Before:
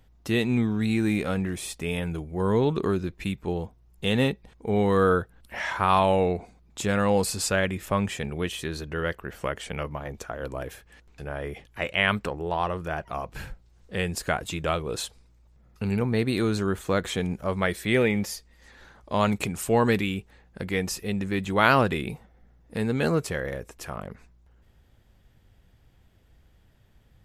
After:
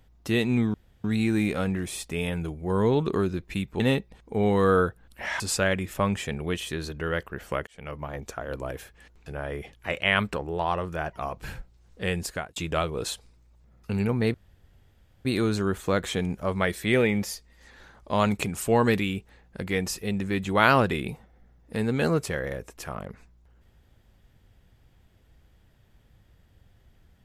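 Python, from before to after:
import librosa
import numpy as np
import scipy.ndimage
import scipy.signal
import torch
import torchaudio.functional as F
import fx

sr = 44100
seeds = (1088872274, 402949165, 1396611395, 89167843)

y = fx.edit(x, sr, fx.insert_room_tone(at_s=0.74, length_s=0.3),
    fx.cut(start_s=3.5, length_s=0.63),
    fx.cut(start_s=5.73, length_s=1.59),
    fx.fade_in_span(start_s=9.59, length_s=0.42),
    fx.fade_out_span(start_s=14.13, length_s=0.35),
    fx.insert_room_tone(at_s=16.26, length_s=0.91), tone=tone)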